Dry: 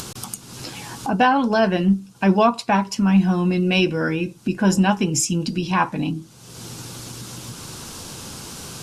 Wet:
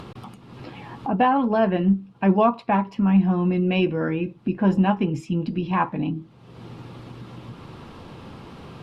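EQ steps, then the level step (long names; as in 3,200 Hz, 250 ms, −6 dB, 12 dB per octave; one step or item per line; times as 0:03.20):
high-frequency loss of the air 490 metres
low-shelf EQ 160 Hz −3 dB
notch filter 1,500 Hz, Q 10
0.0 dB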